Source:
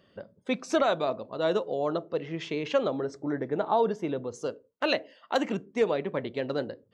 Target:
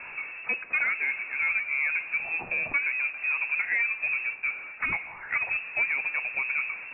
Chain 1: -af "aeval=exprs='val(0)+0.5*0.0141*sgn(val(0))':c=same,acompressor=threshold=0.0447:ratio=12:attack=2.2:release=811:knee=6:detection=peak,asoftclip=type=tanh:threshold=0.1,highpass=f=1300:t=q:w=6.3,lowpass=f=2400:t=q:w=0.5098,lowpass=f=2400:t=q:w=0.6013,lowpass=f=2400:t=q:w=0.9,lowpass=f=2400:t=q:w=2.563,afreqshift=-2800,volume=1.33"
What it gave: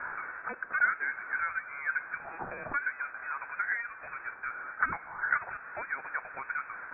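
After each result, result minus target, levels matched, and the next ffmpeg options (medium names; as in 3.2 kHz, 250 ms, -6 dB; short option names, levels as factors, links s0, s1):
1 kHz band +13.0 dB; compression: peak gain reduction +6 dB
-af "aeval=exprs='val(0)+0.5*0.0141*sgn(val(0))':c=same,acompressor=threshold=0.0447:ratio=12:attack=2.2:release=811:knee=6:detection=peak,asoftclip=type=tanh:threshold=0.1,lowpass=f=2400:t=q:w=0.5098,lowpass=f=2400:t=q:w=0.6013,lowpass=f=2400:t=q:w=0.9,lowpass=f=2400:t=q:w=2.563,afreqshift=-2800,volume=1.33"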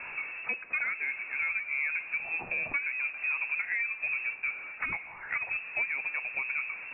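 compression: peak gain reduction +6 dB
-af "aeval=exprs='val(0)+0.5*0.0141*sgn(val(0))':c=same,acompressor=threshold=0.1:ratio=12:attack=2.2:release=811:knee=6:detection=peak,asoftclip=type=tanh:threshold=0.1,lowpass=f=2400:t=q:w=0.5098,lowpass=f=2400:t=q:w=0.6013,lowpass=f=2400:t=q:w=0.9,lowpass=f=2400:t=q:w=2.563,afreqshift=-2800,volume=1.33"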